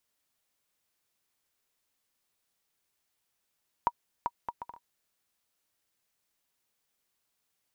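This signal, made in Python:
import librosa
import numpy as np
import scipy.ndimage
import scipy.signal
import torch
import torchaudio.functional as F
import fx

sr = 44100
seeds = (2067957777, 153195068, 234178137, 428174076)

y = fx.bouncing_ball(sr, first_gap_s=0.39, ratio=0.58, hz=954.0, decay_ms=47.0, level_db=-13.5)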